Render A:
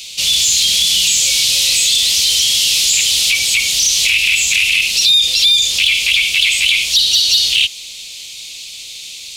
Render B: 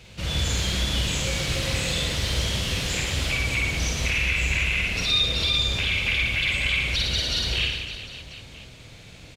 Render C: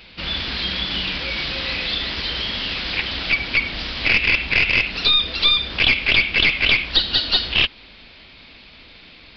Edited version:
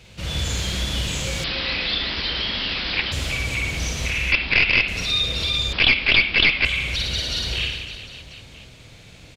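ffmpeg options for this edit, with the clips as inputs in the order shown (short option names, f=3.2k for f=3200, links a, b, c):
-filter_complex "[2:a]asplit=3[a][b][c];[1:a]asplit=4[d][e][f][g];[d]atrim=end=1.442[h];[a]atrim=start=1.438:end=3.122[i];[e]atrim=start=3.118:end=4.322[j];[b]atrim=start=4.318:end=4.882[k];[f]atrim=start=4.878:end=5.732[l];[c]atrim=start=5.728:end=6.652[m];[g]atrim=start=6.648[n];[h][i]acrossfade=d=0.004:c1=hsin:c2=hsin[o];[o][j]acrossfade=d=0.004:c1=hsin:c2=hsin[p];[p][k]acrossfade=d=0.004:c1=hsin:c2=hsin[q];[q][l]acrossfade=d=0.004:c1=hsin:c2=hsin[r];[r][m]acrossfade=d=0.004:c1=hsin:c2=hsin[s];[s][n]acrossfade=d=0.004:c1=hsin:c2=hsin"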